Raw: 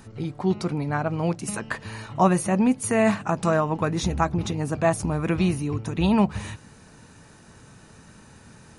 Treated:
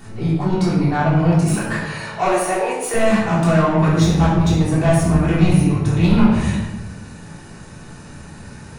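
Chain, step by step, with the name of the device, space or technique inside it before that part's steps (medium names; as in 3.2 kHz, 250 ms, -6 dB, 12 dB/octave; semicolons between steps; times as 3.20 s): 1.79–2.94 s: steep high-pass 360 Hz 48 dB/octave; saturation between pre-emphasis and de-emphasis (treble shelf 4.5 kHz +11.5 dB; saturation -21.5 dBFS, distortion -9 dB; treble shelf 4.5 kHz -11.5 dB); simulated room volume 460 m³, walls mixed, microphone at 3.4 m; trim +1.5 dB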